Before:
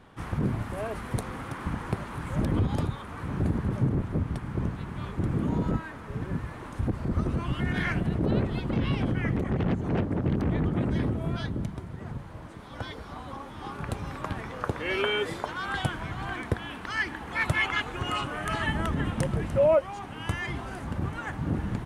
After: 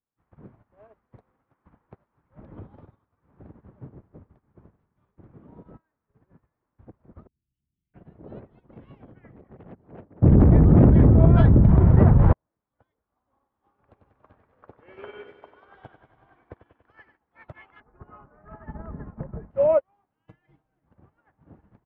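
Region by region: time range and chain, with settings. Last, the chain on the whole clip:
0:02.22–0:04.89: high-frequency loss of the air 84 metres + feedback echo at a low word length 98 ms, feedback 80%, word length 8 bits, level −13 dB
0:07.27–0:07.94: elliptic band-stop filter 390–2,700 Hz + guitar amp tone stack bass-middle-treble 6-0-2 + envelope flattener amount 50%
0:10.22–0:12.33: RIAA equalisation playback + envelope flattener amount 100%
0:13.00–0:17.17: parametric band 160 Hz −8.5 dB 0.23 octaves + feedback echo at a low word length 95 ms, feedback 80%, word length 9 bits, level −5.5 dB
0:17.80–0:19.51: low-pass filter 1,700 Hz 24 dB per octave + low-shelf EQ 190 Hz +10.5 dB + comb filter 4.8 ms, depth 34%
0:20.26–0:20.86: parametric band 1,100 Hz −7 dB 1.8 octaves + comb filter 6.4 ms, depth 92%
whole clip: low-pass filter 2,200 Hz 12 dB per octave; dynamic equaliser 610 Hz, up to +7 dB, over −45 dBFS, Q 0.78; expander for the loud parts 2.5 to 1, over −37 dBFS

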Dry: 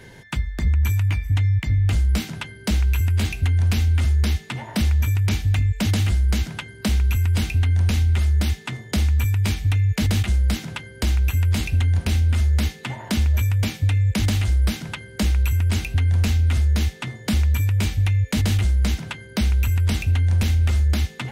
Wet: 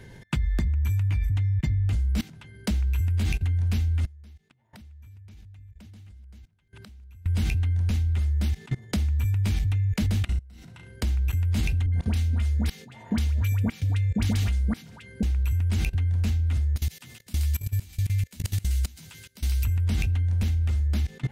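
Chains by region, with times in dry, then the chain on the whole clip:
0:04.05–0:07.26: delay that plays each chunk backwards 658 ms, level −13.5 dB + gate with flip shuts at −26 dBFS, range −25 dB
0:10.25–0:10.97: EQ curve with evenly spaced ripples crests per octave 2, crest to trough 6 dB + downward compressor 16 to 1, threshold −28 dBFS + flutter between parallel walls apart 6 metres, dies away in 0.28 s
0:11.86–0:15.23: high-pass filter 62 Hz + comb filter 4.3 ms, depth 37% + all-pass dispersion highs, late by 75 ms, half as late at 1,000 Hz
0:16.76–0:19.65: first-order pre-emphasis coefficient 0.8 + double-tracking delay 12 ms −6 dB + delay with a high-pass on its return 127 ms, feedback 63%, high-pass 1,700 Hz, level −7.5 dB
whole clip: low-shelf EQ 240 Hz +8.5 dB; output level in coarse steps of 23 dB

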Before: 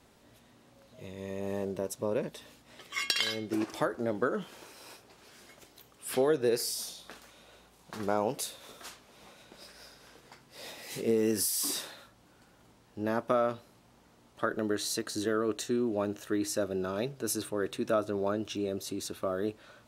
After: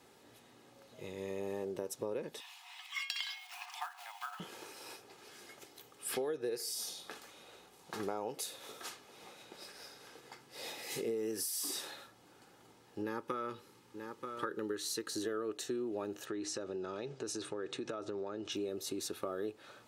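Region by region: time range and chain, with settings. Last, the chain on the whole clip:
0:02.40–0:04.40: one scale factor per block 5 bits + Chebyshev high-pass with heavy ripple 700 Hz, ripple 9 dB + upward compression, threshold −43 dBFS
0:13.01–0:15.12: Butterworth band-reject 670 Hz, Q 2.6 + single-tap delay 932 ms −13.5 dB
0:16.25–0:18.52: low-pass filter 7,800 Hz 24 dB per octave + downward compressor 4 to 1, threshold −35 dBFS
whole clip: high-pass filter 140 Hz 12 dB per octave; comb filter 2.4 ms, depth 38%; downward compressor 4 to 1, threshold −36 dBFS

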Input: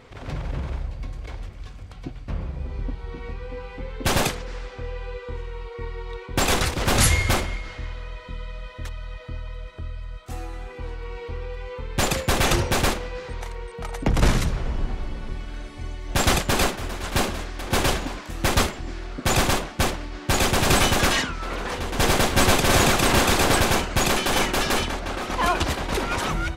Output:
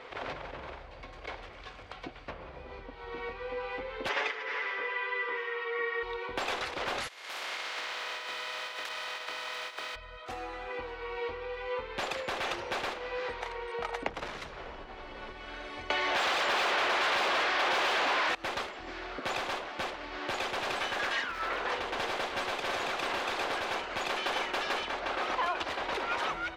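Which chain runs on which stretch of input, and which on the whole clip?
0:04.09–0:06.03: loudspeaker in its box 430–5,600 Hz, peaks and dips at 430 Hz +5 dB, 660 Hz −9 dB, 2,000 Hz +8 dB, 4,200 Hz −8 dB + comb filter 7 ms, depth 81%
0:07.07–0:09.94: compressing power law on the bin magnitudes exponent 0.39 + downward compressor 12 to 1, threshold −34 dBFS + high-pass filter 570 Hz 6 dB per octave
0:15.90–0:18.35: high-shelf EQ 11,000 Hz −8 dB + mid-hump overdrive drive 37 dB, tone 6,400 Hz, clips at −6.5 dBFS
0:20.81–0:21.58: parametric band 1,700 Hz +5 dB 0.36 octaves + surface crackle 450 per second −28 dBFS
whole clip: downward compressor 16 to 1, threshold −31 dBFS; three-way crossover with the lows and the highs turned down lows −21 dB, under 380 Hz, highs −19 dB, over 4,600 Hz; level +5 dB

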